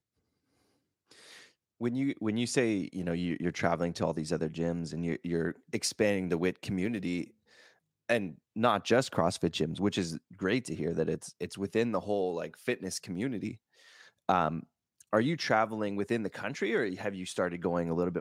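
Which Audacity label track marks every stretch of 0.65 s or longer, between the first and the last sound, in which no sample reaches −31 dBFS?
7.220000	8.090000	silence
13.510000	14.290000	silence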